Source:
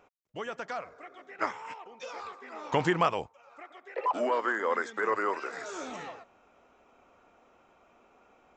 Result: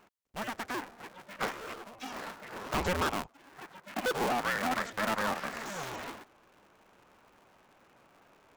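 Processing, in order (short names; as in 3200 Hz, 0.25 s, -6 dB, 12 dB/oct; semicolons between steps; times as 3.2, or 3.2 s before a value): cycle switcher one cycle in 2, inverted; hard clip -26 dBFS, distortion -9 dB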